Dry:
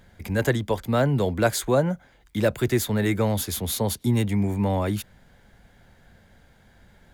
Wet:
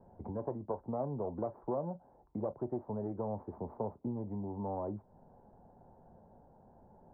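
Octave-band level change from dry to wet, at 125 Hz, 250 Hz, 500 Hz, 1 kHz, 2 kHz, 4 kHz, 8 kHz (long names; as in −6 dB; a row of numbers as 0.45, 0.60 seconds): −18.5 dB, −14.5 dB, −13.0 dB, −11.5 dB, below −40 dB, below −40 dB, below −40 dB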